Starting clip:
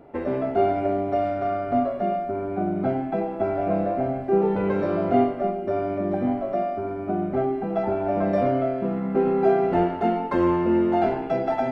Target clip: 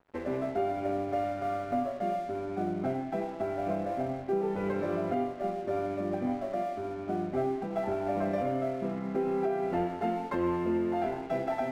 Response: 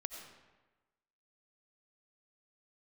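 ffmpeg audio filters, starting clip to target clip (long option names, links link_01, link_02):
-filter_complex "[0:a]equalizer=frequency=2100:width=2.1:gain=3.5,bandreject=frequency=60:width_type=h:width=6,bandreject=frequency=120:width_type=h:width=6,asplit=2[link_01][link_02];[1:a]atrim=start_sample=2205,adelay=23[link_03];[link_02][link_03]afir=irnorm=-1:irlink=0,volume=-13dB[link_04];[link_01][link_04]amix=inputs=2:normalize=0,aeval=exprs='sgn(val(0))*max(abs(val(0))-0.00596,0)':channel_layout=same,alimiter=limit=-14dB:level=0:latency=1:release=335,volume=-6.5dB"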